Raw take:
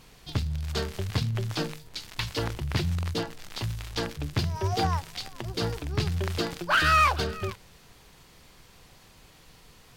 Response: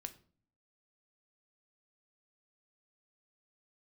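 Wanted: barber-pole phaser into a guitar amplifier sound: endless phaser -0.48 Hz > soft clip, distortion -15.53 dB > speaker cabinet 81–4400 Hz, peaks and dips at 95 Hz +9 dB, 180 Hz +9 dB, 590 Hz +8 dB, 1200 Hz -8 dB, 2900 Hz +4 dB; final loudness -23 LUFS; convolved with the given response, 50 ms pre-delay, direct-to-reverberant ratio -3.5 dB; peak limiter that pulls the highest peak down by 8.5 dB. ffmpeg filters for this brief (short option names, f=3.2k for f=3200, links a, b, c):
-filter_complex "[0:a]alimiter=limit=-20.5dB:level=0:latency=1,asplit=2[a][b];[1:a]atrim=start_sample=2205,adelay=50[c];[b][c]afir=irnorm=-1:irlink=0,volume=7.5dB[d];[a][d]amix=inputs=2:normalize=0,asplit=2[e][f];[f]afreqshift=-0.48[g];[e][g]amix=inputs=2:normalize=1,asoftclip=threshold=-23dB,highpass=81,equalizer=f=95:t=q:w=4:g=9,equalizer=f=180:t=q:w=4:g=9,equalizer=f=590:t=q:w=4:g=8,equalizer=f=1.2k:t=q:w=4:g=-8,equalizer=f=2.9k:t=q:w=4:g=4,lowpass=f=4.4k:w=0.5412,lowpass=f=4.4k:w=1.3066,volume=7.5dB"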